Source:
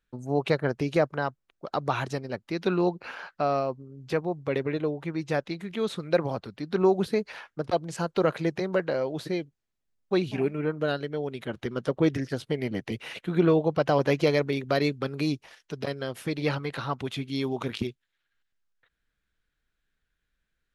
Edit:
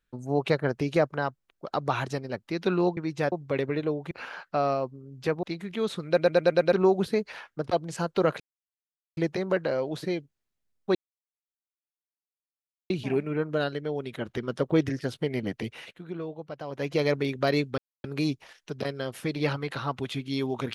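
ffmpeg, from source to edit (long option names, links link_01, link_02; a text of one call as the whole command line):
ffmpeg -i in.wav -filter_complex "[0:a]asplit=16[link_01][link_02][link_03][link_04][link_05][link_06][link_07][link_08][link_09][link_10][link_11][link_12][link_13][link_14][link_15][link_16];[link_01]atrim=end=2.972[link_17];[link_02]atrim=start=5.078:end=5.432[link_18];[link_03]atrim=start=4.288:end=5.082[link_19];[link_04]atrim=start=2.968:end=4.292[link_20];[link_05]atrim=start=5.428:end=6.182[link_21];[link_06]atrim=start=6.068:end=6.182[link_22];[link_07]atrim=start=6.068:end=6.182[link_23];[link_08]atrim=start=6.068:end=6.182[link_24];[link_09]atrim=start=6.068:end=6.182[link_25];[link_10]atrim=start=6.068:end=6.182[link_26];[link_11]atrim=start=6.728:end=8.4,asetpts=PTS-STARTPTS,afade=type=out:start_time=1.668:duration=0.004:curve=hsin,apad=pad_dur=0.77[link_27];[link_12]atrim=start=8.4:end=10.18,asetpts=PTS-STARTPTS,afade=type=in:duration=0.004:curve=hsin,afade=type=out:start_time=1.776:duration=0.004:curve=hsin,apad=pad_dur=1.95[link_28];[link_13]atrim=start=10.18:end=13.31,asetpts=PTS-STARTPTS,afade=type=in:duration=0.004:curve=hsin,afade=type=out:start_time=2.69:duration=0.44:silence=0.188365[link_29];[link_14]atrim=start=13.31:end=13.98,asetpts=PTS-STARTPTS,volume=-14.5dB[link_30];[link_15]atrim=start=13.98:end=15.06,asetpts=PTS-STARTPTS,afade=type=in:duration=0.44:silence=0.188365,afade=type=out:start_time=1.076:duration=0.004:curve=hsin,apad=pad_dur=0.26[link_31];[link_16]atrim=start=15.06,asetpts=PTS-STARTPTS,afade=type=in:duration=0.004:curve=hsin[link_32];[link_17][link_18]acrossfade=duration=0.004:curve1=hsin:curve2=hsin[link_33];[link_33][link_19]acrossfade=duration=0.004:curve1=hsin:curve2=hsin[link_34];[link_34][link_20]acrossfade=duration=0.004:curve1=hsin:curve2=hsin[link_35];[link_35][link_21]acrossfade=duration=0.004:curve1=hsin:curve2=hsin[link_36];[link_36][link_22]acrossfade=duration=0.004:curve1=hsin:curve2=hsin[link_37];[link_37][link_23]acrossfade=duration=0.004:curve1=hsin:curve2=hsin[link_38];[link_38][link_24]acrossfade=duration=0.004:curve1=hsin:curve2=hsin[link_39];[link_39][link_25]acrossfade=duration=0.004:curve1=hsin:curve2=hsin[link_40];[link_40][link_26]acrossfade=duration=0.004:curve1=hsin:curve2=hsin[link_41];[link_27][link_28][link_29][link_30][link_31][link_32]concat=n=6:v=0:a=1[link_42];[link_41][link_42]acrossfade=duration=0.004:curve1=hsin:curve2=hsin" out.wav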